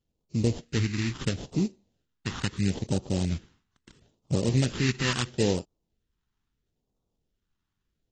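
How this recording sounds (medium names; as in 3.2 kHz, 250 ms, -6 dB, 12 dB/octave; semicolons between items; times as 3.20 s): aliases and images of a low sample rate 2.3 kHz, jitter 20%; phasing stages 2, 0.75 Hz, lowest notch 500–1700 Hz; AAC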